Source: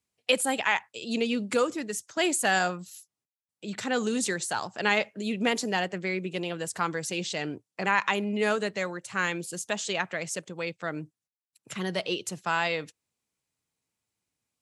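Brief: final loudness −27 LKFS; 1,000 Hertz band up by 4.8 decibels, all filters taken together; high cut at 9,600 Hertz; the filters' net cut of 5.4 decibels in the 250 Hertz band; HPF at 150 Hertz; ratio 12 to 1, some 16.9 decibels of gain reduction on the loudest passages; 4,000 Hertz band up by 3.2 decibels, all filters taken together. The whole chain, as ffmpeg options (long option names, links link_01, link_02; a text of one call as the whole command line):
ffmpeg -i in.wav -af "highpass=150,lowpass=9600,equalizer=frequency=250:width_type=o:gain=-6.5,equalizer=frequency=1000:width_type=o:gain=6.5,equalizer=frequency=4000:width_type=o:gain=4,acompressor=threshold=-33dB:ratio=12,volume=11dB" out.wav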